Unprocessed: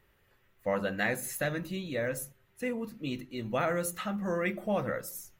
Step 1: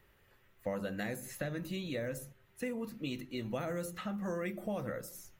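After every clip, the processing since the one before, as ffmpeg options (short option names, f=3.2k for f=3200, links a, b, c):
-filter_complex "[0:a]acrossover=split=500|5300[a][b][c];[a]acompressor=threshold=-38dB:ratio=4[d];[b]acompressor=threshold=-44dB:ratio=4[e];[c]acompressor=threshold=-51dB:ratio=4[f];[d][e][f]amix=inputs=3:normalize=0,volume=1dB"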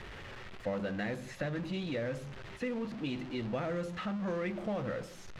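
-af "aeval=exprs='val(0)+0.5*0.01*sgn(val(0))':c=same,lowpass=3.8k"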